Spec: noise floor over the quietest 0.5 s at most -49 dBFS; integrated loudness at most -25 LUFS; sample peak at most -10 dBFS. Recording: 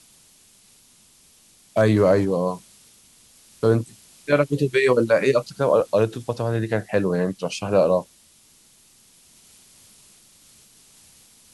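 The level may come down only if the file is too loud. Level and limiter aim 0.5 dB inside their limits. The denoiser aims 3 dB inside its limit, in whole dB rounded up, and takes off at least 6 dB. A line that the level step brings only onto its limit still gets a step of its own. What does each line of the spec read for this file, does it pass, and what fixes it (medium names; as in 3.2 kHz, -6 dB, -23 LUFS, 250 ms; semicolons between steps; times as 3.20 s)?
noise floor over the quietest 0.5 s -55 dBFS: pass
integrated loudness -21.0 LUFS: fail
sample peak -5.0 dBFS: fail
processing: trim -4.5 dB; peak limiter -10.5 dBFS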